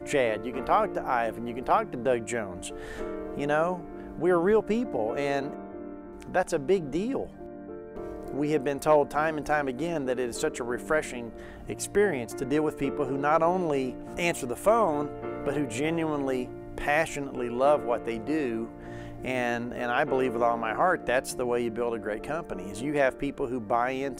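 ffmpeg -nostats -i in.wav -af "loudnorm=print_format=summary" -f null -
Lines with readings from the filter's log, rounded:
Input Integrated:    -28.3 LUFS
Input True Peak:     -10.1 dBTP
Input LRA:             2.5 LU
Input Threshold:     -38.6 LUFS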